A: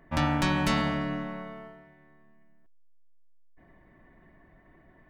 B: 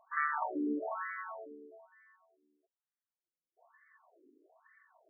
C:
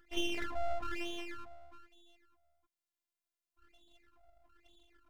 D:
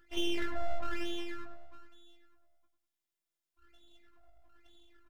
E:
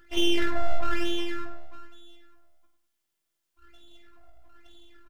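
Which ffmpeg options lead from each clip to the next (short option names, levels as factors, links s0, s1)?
-af "equalizer=f=1600:w=2.6:g=3,bandreject=f=550:w=12,afftfilt=real='re*between(b*sr/1024,330*pow(1600/330,0.5+0.5*sin(2*PI*1.1*pts/sr))/1.41,330*pow(1600/330,0.5+0.5*sin(2*PI*1.1*pts/sr))*1.41)':imag='im*between(b*sr/1024,330*pow(1600/330,0.5+0.5*sin(2*PI*1.1*pts/sr))/1.41,330*pow(1600/330,0.5+0.5*sin(2*PI*1.1*pts/sr))*1.41)':win_size=1024:overlap=0.75"
-af "afftfilt=real='hypot(re,im)*cos(PI*b)':imag='0':win_size=512:overlap=0.75,aeval=exprs='abs(val(0))':c=same,volume=1.68"
-filter_complex "[0:a]asplit=2[s0][s1];[s1]adelay=18,volume=0.422[s2];[s0][s2]amix=inputs=2:normalize=0,asplit=2[s3][s4];[s4]adelay=99,lowpass=f=1600:p=1,volume=0.447,asplit=2[s5][s6];[s6]adelay=99,lowpass=f=1600:p=1,volume=0.35,asplit=2[s7][s8];[s8]adelay=99,lowpass=f=1600:p=1,volume=0.35,asplit=2[s9][s10];[s10]adelay=99,lowpass=f=1600:p=1,volume=0.35[s11];[s3][s5][s7][s9][s11]amix=inputs=5:normalize=0"
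-filter_complex "[0:a]asplit=2[s0][s1];[s1]adelay=50,volume=0.355[s2];[s0][s2]amix=inputs=2:normalize=0,volume=2.51"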